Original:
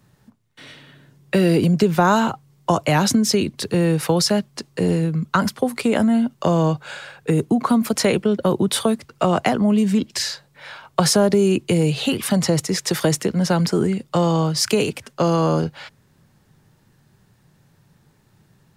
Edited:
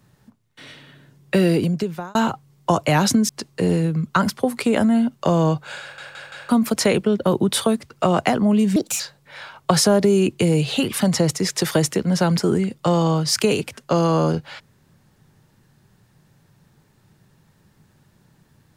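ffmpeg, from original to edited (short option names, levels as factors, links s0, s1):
-filter_complex "[0:a]asplit=9[s0][s1][s2][s3][s4][s5][s6][s7][s8];[s0]atrim=end=2.15,asetpts=PTS-STARTPTS,afade=t=out:st=1.41:d=0.74[s9];[s1]atrim=start=2.15:end=3.292,asetpts=PTS-STARTPTS,afade=t=in:d=0.004:c=hsin[s10];[s2]atrim=start=4.478:end=7.172[s11];[s3]atrim=start=6.998:end=7.172[s12];[s4]atrim=start=6.998:end=7.172[s13];[s5]atrim=start=6.998:end=7.172[s14];[s6]atrim=start=7.678:end=9.954[s15];[s7]atrim=start=9.95:end=10.29,asetpts=PTS-STARTPTS,asetrate=62622,aresample=44100,atrim=end_sample=10559,asetpts=PTS-STARTPTS[s16];[s8]atrim=start=10.286[s17];[s9][s10]concat=n=2:v=0:a=1[s18];[s18][s11]acrossfade=d=0.004:c1=hsin:c2=hsin[s19];[s19][s12]acrossfade=d=0.004:c1=hsin:c2=hsin[s20];[s20][s13]acrossfade=d=0.004:c1=hsin:c2=hsin[s21];[s21][s14]acrossfade=d=0.004:c1=hsin:c2=hsin[s22];[s22][s15]acrossfade=d=0.004:c1=hsin:c2=hsin[s23];[s23][s16]acrossfade=d=0.004:c1=hsin:c2=hsin[s24];[s24][s17]acrossfade=d=0.004:c1=hsin:c2=hsin"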